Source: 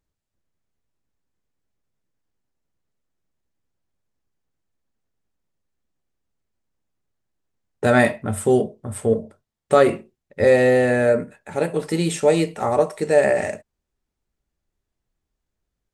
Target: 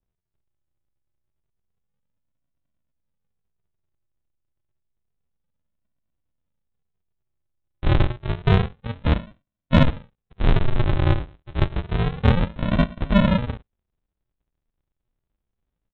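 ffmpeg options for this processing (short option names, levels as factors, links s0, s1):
-af "aresample=8000,acrusher=samples=27:mix=1:aa=0.000001:lfo=1:lforange=16.2:lforate=0.29,aresample=44100,asoftclip=type=tanh:threshold=0.75,adynamicequalizer=threshold=0.0112:dfrequency=2000:dqfactor=0.7:tfrequency=2000:tqfactor=0.7:attack=5:release=100:ratio=0.375:range=2:mode=cutabove:tftype=highshelf"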